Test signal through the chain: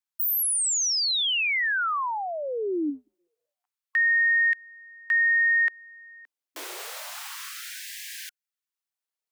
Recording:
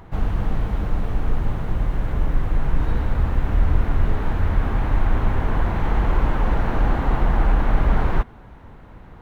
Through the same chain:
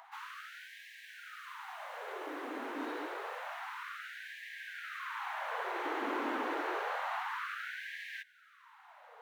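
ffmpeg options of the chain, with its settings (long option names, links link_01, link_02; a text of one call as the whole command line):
ffmpeg -i in.wav -filter_complex "[0:a]acrossover=split=110|480|870[link_01][link_02][link_03][link_04];[link_01]asoftclip=type=tanh:threshold=-22.5dB[link_05];[link_03]acompressor=threshold=-46dB:ratio=6[link_06];[link_05][link_02][link_06][link_04]amix=inputs=4:normalize=0,afftfilt=real='re*gte(b*sr/1024,240*pow(1600/240,0.5+0.5*sin(2*PI*0.28*pts/sr)))':imag='im*gte(b*sr/1024,240*pow(1600/240,0.5+0.5*sin(2*PI*0.28*pts/sr)))':win_size=1024:overlap=0.75,volume=-4.5dB" out.wav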